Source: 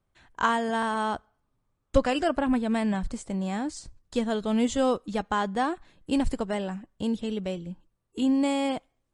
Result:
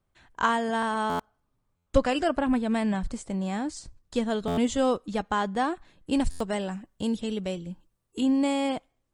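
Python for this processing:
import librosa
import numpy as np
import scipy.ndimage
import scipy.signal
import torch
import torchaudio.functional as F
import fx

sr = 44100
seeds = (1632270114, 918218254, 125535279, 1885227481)

y = fx.high_shelf(x, sr, hz=4600.0, db=6.5, at=(6.2, 8.21))
y = fx.buffer_glitch(y, sr, at_s=(1.09, 1.76, 4.47, 6.3), block=512, repeats=8)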